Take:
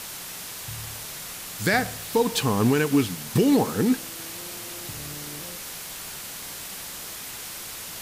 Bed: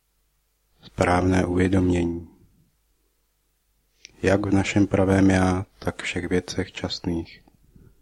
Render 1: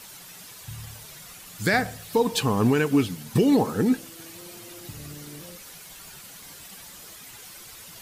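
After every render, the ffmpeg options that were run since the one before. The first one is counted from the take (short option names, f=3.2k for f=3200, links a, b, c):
-af "afftdn=nr=10:nf=-37"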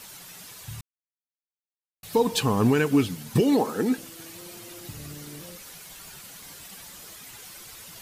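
-filter_complex "[0:a]asettb=1/sr,asplit=3[a][b][c];[a]atrim=end=3.404[d];[b]atrim=start=3.4:end=3.98,asetpts=PTS-STARTPTS,afade=t=in:d=0.004:c=qsin,afade=t=out:st=0.576:d=0.004:c=qsin,highpass=250[e];[c]atrim=start=3.976[f];[d][e]acrossfade=d=0.004:c1=hsin:c2=qsin[g];[g][f]acrossfade=d=0.004:c1=qsin:c2=hsin,asplit=3[h][i][j];[h]atrim=end=0.81,asetpts=PTS-STARTPTS,afade=t=out:st=0.806:d=0.004:c=hsin[k];[i]atrim=start=0.81:end=2.03,asetpts=PTS-STARTPTS,volume=0[l];[j]atrim=start=2.03,asetpts=PTS-STARTPTS,afade=t=in:d=0.004:c=hsin[m];[k][l][m]concat=n=3:v=0:a=1"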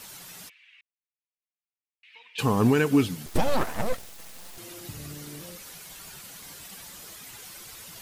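-filter_complex "[0:a]asplit=3[a][b][c];[a]afade=t=out:st=0.48:d=0.02[d];[b]asuperpass=centerf=2400:order=4:qfactor=2.6,afade=t=in:st=0.48:d=0.02,afade=t=out:st=2.38:d=0.02[e];[c]afade=t=in:st=2.38:d=0.02[f];[d][e][f]amix=inputs=3:normalize=0,asettb=1/sr,asplit=3[g][h][i];[g]atrim=end=3.264[j];[h]atrim=start=3.26:end=4.58,asetpts=PTS-STARTPTS,afade=t=in:d=0.004:c=qsin,afade=t=out:st=1.316:d=0.004:c=qsin,aeval=exprs='abs(val(0))':c=same[k];[i]atrim=start=4.576[l];[j][k]acrossfade=d=0.004:c1=hsin:c2=qsin[m];[m][l]acrossfade=d=0.004:c1=qsin:c2=hsin"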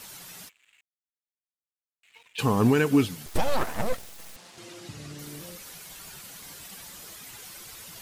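-filter_complex "[0:a]asettb=1/sr,asplit=3[a][b][c];[a]atrim=end=0.454[d];[b]atrim=start=0.45:end=2.43,asetpts=PTS-STARTPTS,afade=t=in:d=0.004:c=qsin,afade=t=out:st=1.976:d=0.004:c=qsin,aeval=exprs='sgn(val(0))*max(abs(val(0))-0.0015,0)':c=same[e];[c]atrim=start=2.426[f];[d][e]acrossfade=d=0.004:c1=hsin:c2=qsin[g];[g][f]acrossfade=d=0.004:c1=qsin:c2=hsin,asettb=1/sr,asplit=3[h][i][j];[h]atrim=end=3.054[k];[i]atrim=start=3.05:end=3.62,asetpts=PTS-STARTPTS,afade=t=in:d=0.004:c=qsin,afade=t=out:st=0.566:d=0.004:c=qsin,equalizer=f=220:t=o:w=1.7:g=-6[l];[j]atrim=start=3.616[m];[k][l]acrossfade=d=0.004:c1=hsin:c2=qsin[n];[n][m]acrossfade=d=0.004:c1=qsin:c2=hsin,asettb=1/sr,asplit=3[o][p][q];[o]atrim=end=4.364[r];[p]atrim=start=4.36:end=5.19,asetpts=PTS-STARTPTS,afade=t=in:d=0.004:c=qsin,afade=t=out:st=0.826:d=0.004:c=qsin,highpass=100,lowpass=6.9k[s];[q]atrim=start=5.186[t];[r][s]acrossfade=d=0.004:c1=hsin:c2=qsin[u];[u][t]acrossfade=d=0.004:c1=qsin:c2=hsin"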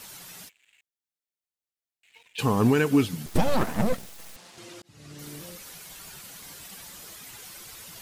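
-filter_complex "[0:a]asettb=1/sr,asplit=3[a][b][c];[a]atrim=end=0.444[d];[b]atrim=start=0.44:end=2.42,asetpts=PTS-STARTPTS,afade=t=in:d=0.004:c=qsin,afade=t=out:st=1.976:d=0.004:c=qsin,equalizer=f=1.2k:t=o:w=0.53:g=-7[e];[c]atrim=start=2.416[f];[d][e]acrossfade=d=0.004:c1=hsin:c2=qsin[g];[g][f]acrossfade=d=0.004:c1=qsin:c2=hsin,asettb=1/sr,asplit=3[h][i][j];[h]atrim=end=3.134[k];[i]atrim=start=3.13:end=4.07,asetpts=PTS-STARTPTS,afade=t=in:d=0.004:c=qsin,afade=t=out:st=0.936:d=0.004:c=qsin,equalizer=f=190:w=0.94:g=11[l];[j]atrim=start=4.066[m];[k][l]acrossfade=d=0.004:c1=hsin:c2=qsin[n];[n][m]acrossfade=d=0.004:c1=qsin:c2=hsin,asplit=2[o][p];[o]atrim=end=4.82,asetpts=PTS-STARTPTS,afade=t=out:st=4.816:d=0.004:c=hsin[q];[p]atrim=start=4.82,asetpts=PTS-STARTPTS,afade=t=in:d=0.44[r];[q][r]concat=n=2:v=0:a=1"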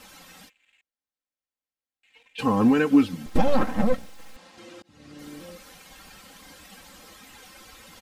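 -af "lowpass=f=2.6k:p=1,aecho=1:1:3.8:0.71"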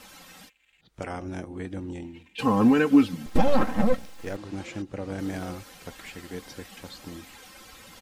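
-filter_complex "[1:a]volume=-15dB[a];[0:a][a]amix=inputs=2:normalize=0"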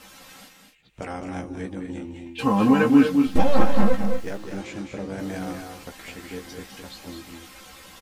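-filter_complex "[0:a]asplit=2[a][b];[b]adelay=15,volume=-4.5dB[c];[a][c]amix=inputs=2:normalize=0,aecho=1:1:207|242:0.447|0.355"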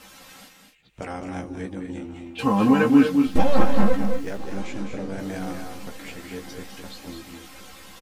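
-filter_complex "[0:a]asplit=2[a][b];[b]adelay=1021,lowpass=f=2k:p=1,volume=-18.5dB,asplit=2[c][d];[d]adelay=1021,lowpass=f=2k:p=1,volume=0.46,asplit=2[e][f];[f]adelay=1021,lowpass=f=2k:p=1,volume=0.46,asplit=2[g][h];[h]adelay=1021,lowpass=f=2k:p=1,volume=0.46[i];[a][c][e][g][i]amix=inputs=5:normalize=0"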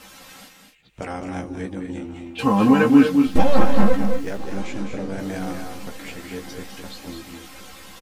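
-af "volume=2.5dB,alimiter=limit=-1dB:level=0:latency=1"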